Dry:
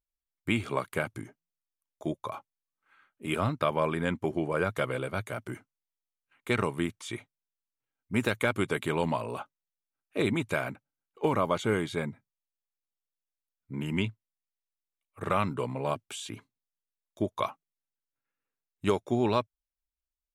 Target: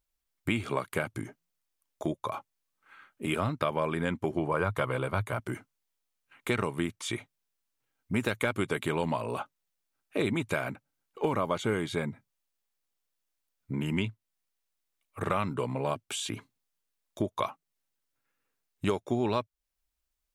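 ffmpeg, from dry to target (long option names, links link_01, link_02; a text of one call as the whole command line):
ffmpeg -i in.wav -filter_complex "[0:a]asettb=1/sr,asplit=3[link_01][link_02][link_03];[link_01]atrim=end=4.384[link_04];[link_02]atrim=start=4.38:end=5.4,asetpts=PTS-STARTPTS,afade=type=in:duration=0.004:curve=qsin,afade=type=out:start_time=1.016:duration=0.004:curve=qsin,equalizer=frequency=100:width_type=o:width=0.67:gain=8,equalizer=frequency=1000:width_type=o:width=0.67:gain=8,equalizer=frequency=6300:width_type=o:width=0.67:gain=-4[link_05];[link_03]atrim=start=5.396[link_06];[link_04][link_05]acrossfade=duration=0.004:curve1=hsin:curve2=qsin[link_07];[link_07][link_06]acrossfade=duration=0.004:curve1=qsin:curve2=hsin,acompressor=threshold=-42dB:ratio=2,volume=8.5dB" out.wav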